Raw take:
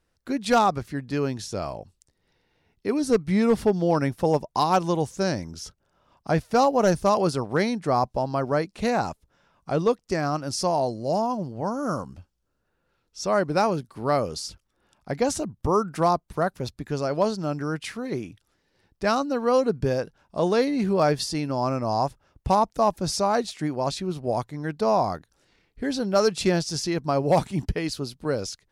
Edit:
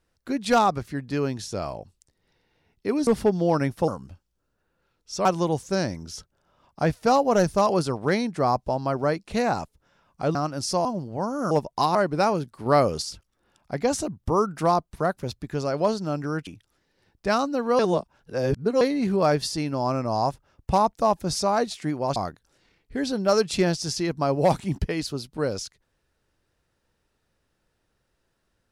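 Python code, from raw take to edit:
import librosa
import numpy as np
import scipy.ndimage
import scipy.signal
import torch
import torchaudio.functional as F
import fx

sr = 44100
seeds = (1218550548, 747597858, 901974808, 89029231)

y = fx.edit(x, sr, fx.cut(start_s=3.07, length_s=0.41),
    fx.swap(start_s=4.29, length_s=0.44, other_s=11.95, other_length_s=1.37),
    fx.cut(start_s=9.83, length_s=0.42),
    fx.cut(start_s=10.75, length_s=0.54),
    fx.clip_gain(start_s=14.03, length_s=0.36, db=4.0),
    fx.cut(start_s=17.84, length_s=0.4),
    fx.reverse_span(start_s=19.56, length_s=1.02),
    fx.cut(start_s=23.93, length_s=1.1), tone=tone)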